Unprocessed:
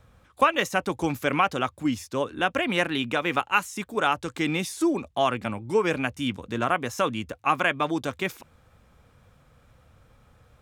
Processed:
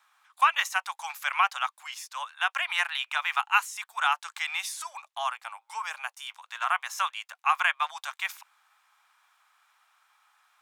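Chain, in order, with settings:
Butterworth high-pass 830 Hz 48 dB per octave
0:04.91–0:06.32: dynamic equaliser 2,300 Hz, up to −7 dB, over −43 dBFS, Q 0.84

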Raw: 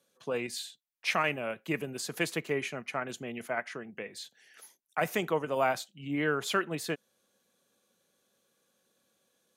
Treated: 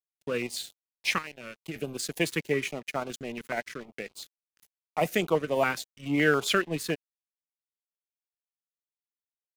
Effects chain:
0:01.18–0:01.76: downward compressor 10 to 1, threshold −37 dBFS, peak gain reduction 13.5 dB
0:05.95–0:06.55: parametric band 1,400 Hz +5.5 dB 2.5 octaves
dead-zone distortion −46.5 dBFS
notch on a step sequencer 7.1 Hz 680–1,800 Hz
level +6 dB

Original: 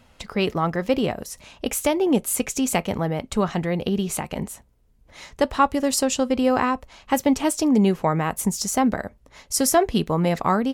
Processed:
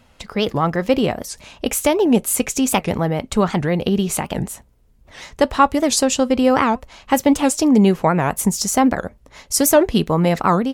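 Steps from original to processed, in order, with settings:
automatic gain control gain up to 4 dB
wow of a warped record 78 rpm, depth 250 cents
level +1.5 dB

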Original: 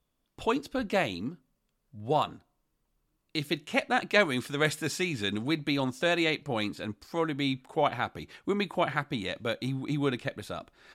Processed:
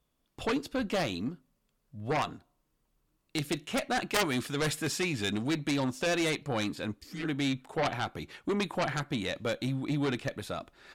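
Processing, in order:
harmonic generator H 3 −6 dB, 4 −7 dB, 6 −11 dB, 7 −12 dB, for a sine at −9.5 dBFS
healed spectral selection 0:07.03–0:07.24, 220–1,700 Hz both
level −5.5 dB

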